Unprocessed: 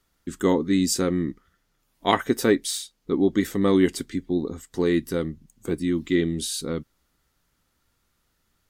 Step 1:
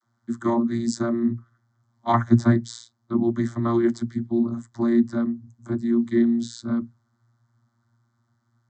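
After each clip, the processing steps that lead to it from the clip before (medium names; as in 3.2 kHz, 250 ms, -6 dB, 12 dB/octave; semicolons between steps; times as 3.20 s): vocoder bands 32, saw 117 Hz; static phaser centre 1.1 kHz, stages 4; trim +8 dB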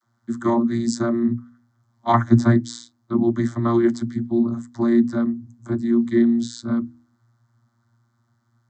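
de-hum 80.33 Hz, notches 4; trim +3 dB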